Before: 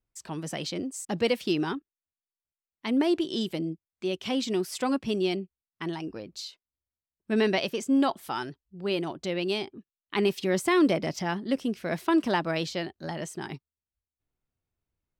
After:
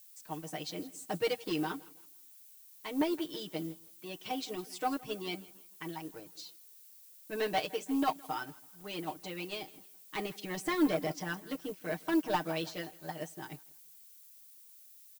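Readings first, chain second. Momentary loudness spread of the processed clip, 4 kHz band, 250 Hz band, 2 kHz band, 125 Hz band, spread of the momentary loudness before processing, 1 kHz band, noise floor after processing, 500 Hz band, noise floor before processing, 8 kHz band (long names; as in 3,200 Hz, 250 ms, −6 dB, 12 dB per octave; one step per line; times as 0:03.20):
21 LU, −7.5 dB, −8.5 dB, −6.5 dB, −9.0 dB, 13 LU, −4.0 dB, −57 dBFS, −8.5 dB, below −85 dBFS, −6.5 dB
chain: parametric band 780 Hz +3 dB 1.4 octaves
tuned comb filter 380 Hz, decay 0.16 s, harmonics all, mix 60%
on a send: repeating echo 163 ms, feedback 50%, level −17 dB
on the sum: harmonic and percussive parts rebalanced harmonic −5 dB
leveller curve on the samples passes 2
comb filter 6.5 ms, depth 95%
background noise violet −43 dBFS
expander for the loud parts 1.5 to 1, over −36 dBFS
level −4.5 dB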